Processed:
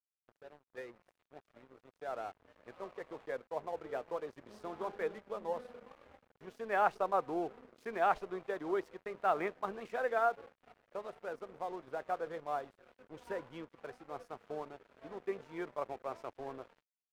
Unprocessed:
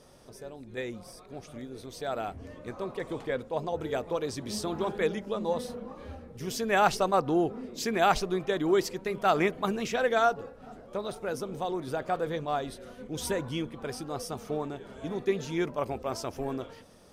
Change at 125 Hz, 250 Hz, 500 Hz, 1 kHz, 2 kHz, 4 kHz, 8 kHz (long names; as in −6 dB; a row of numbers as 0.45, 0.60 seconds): −19.0 dB, −14.0 dB, −8.5 dB, −6.0 dB, −8.5 dB, −19.5 dB, below −20 dB